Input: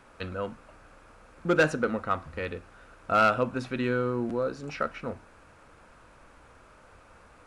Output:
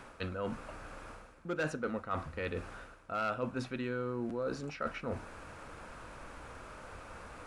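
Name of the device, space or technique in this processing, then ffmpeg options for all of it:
compression on the reversed sound: -af "areverse,acompressor=threshold=-42dB:ratio=4,areverse,volume=6dB"

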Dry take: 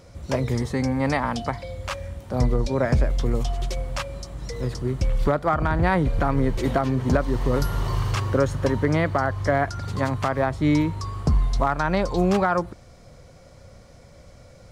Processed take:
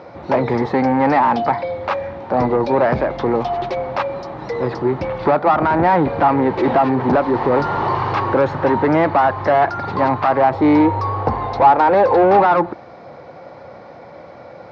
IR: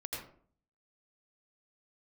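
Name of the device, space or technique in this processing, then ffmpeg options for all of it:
overdrive pedal into a guitar cabinet: -filter_complex "[0:a]asettb=1/sr,asplit=3[link_01][link_02][link_03];[link_01]atrim=end=10.534[link_04];[link_02]atrim=start=10.53:end=12.39,asetpts=PTS-STARTPTS,afade=type=in:duration=0.004:curve=qsin,afade=type=out:start_time=1.856:duration=0.004:curve=qsin,equalizer=frequency=100:width_type=o:width=0.33:gain=11,equalizer=frequency=160:width_type=o:width=0.33:gain=-11,equalizer=frequency=500:width_type=o:width=0.33:gain=11,equalizer=frequency=800:width_type=o:width=0.33:gain=5,equalizer=frequency=10000:width_type=o:width=0.33:gain=7[link_05];[link_03]atrim=start=12.386[link_06];[link_04][link_05]acrossfade=duration=0.004:curve1=hsin:curve2=qsin[link_07];[link_07][link_06]acrossfade=duration=0.004:curve1=qsin:curve2=hsin,asplit=2[link_08][link_09];[link_09]highpass=frequency=720:poles=1,volume=24dB,asoftclip=type=tanh:threshold=-6.5dB[link_10];[link_08][link_10]amix=inputs=2:normalize=0,lowpass=frequency=1100:poles=1,volume=-6dB,highpass=110,equalizer=frequency=330:width_type=q:width=4:gain=5,equalizer=frequency=840:width_type=q:width=4:gain=9,equalizer=frequency=3100:width_type=q:width=4:gain=-6,lowpass=frequency=4300:width=0.5412,lowpass=frequency=4300:width=1.3066"

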